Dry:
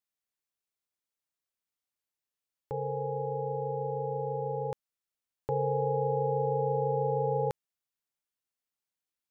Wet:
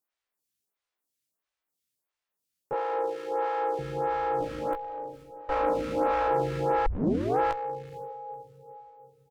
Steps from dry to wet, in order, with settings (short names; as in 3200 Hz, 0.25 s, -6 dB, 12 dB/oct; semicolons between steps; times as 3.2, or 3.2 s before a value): 4.4–6.28 minimum comb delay 3.8 ms; doubler 17 ms -3.5 dB; diffused feedback echo 0.478 s, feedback 44%, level -12 dB; one-sided clip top -35.5 dBFS; 2.73–3.79 HPF 320 Hz 24 dB/oct; 6.86 tape start 0.53 s; photocell phaser 1.5 Hz; gain +6.5 dB